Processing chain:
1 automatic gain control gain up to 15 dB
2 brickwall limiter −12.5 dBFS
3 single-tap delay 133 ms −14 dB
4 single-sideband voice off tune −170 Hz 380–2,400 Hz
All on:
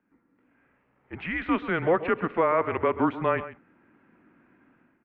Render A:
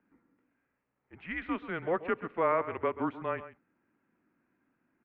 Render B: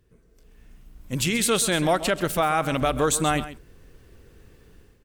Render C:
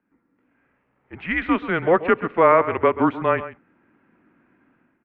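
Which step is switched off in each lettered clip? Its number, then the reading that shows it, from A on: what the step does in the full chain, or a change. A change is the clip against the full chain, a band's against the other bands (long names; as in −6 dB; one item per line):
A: 1, change in integrated loudness −7.0 LU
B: 4, 125 Hz band +5.5 dB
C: 2, average gain reduction 2.5 dB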